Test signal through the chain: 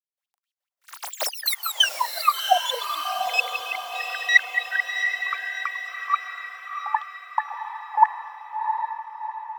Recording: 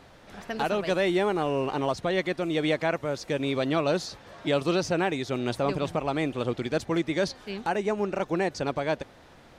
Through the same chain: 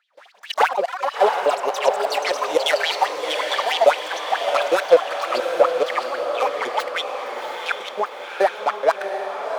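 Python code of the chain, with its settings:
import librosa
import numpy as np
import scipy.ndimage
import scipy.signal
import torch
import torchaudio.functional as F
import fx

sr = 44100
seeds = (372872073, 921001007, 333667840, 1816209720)

y = fx.tracing_dist(x, sr, depth_ms=0.18)
y = fx.step_gate(y, sr, bpm=175, pattern='..x..x.x.x..', floor_db=-24.0, edge_ms=4.5)
y = fx.filter_lfo_highpass(y, sr, shape='sine', hz=4.6, low_hz=480.0, high_hz=3400.0, q=7.8)
y = fx.echo_pitch(y, sr, ms=125, semitones=5, count=3, db_per_echo=-6.0)
y = fx.echo_diffused(y, sr, ms=725, feedback_pct=51, wet_db=-5.5)
y = y * librosa.db_to_amplitude(2.5)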